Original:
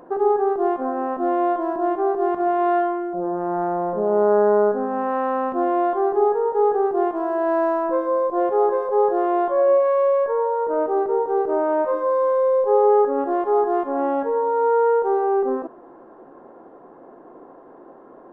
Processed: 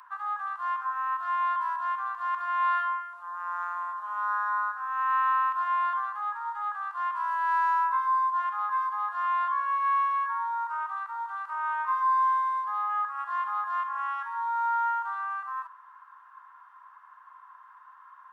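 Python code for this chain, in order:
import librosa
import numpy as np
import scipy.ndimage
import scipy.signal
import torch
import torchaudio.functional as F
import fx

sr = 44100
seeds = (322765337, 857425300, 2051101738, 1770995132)

y = scipy.signal.sosfilt(scipy.signal.cheby1(6, 1.0, 1000.0, 'highpass', fs=sr, output='sos'), x)
y = y * 10.0 ** (4.0 / 20.0)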